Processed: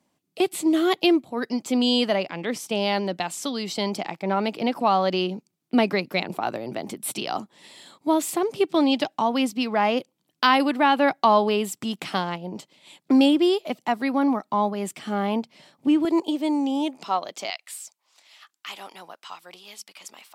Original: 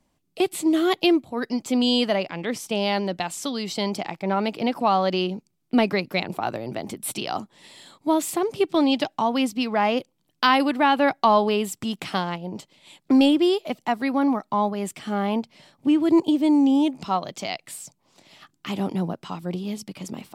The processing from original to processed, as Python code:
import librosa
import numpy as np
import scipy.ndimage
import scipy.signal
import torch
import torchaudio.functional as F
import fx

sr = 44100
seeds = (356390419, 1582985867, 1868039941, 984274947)

y = fx.highpass(x, sr, hz=fx.steps((0.0, 150.0), (16.05, 380.0), (17.5, 1100.0)), slope=12)